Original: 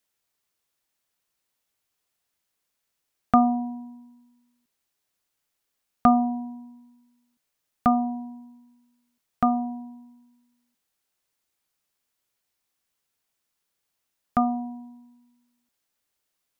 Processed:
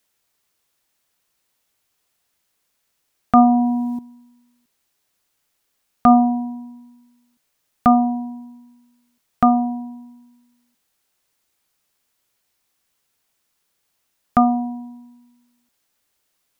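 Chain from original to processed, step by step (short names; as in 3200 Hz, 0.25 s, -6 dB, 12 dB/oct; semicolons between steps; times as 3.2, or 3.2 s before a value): maximiser +10.5 dB; 3.45–3.99 fast leveller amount 50%; gain -2.5 dB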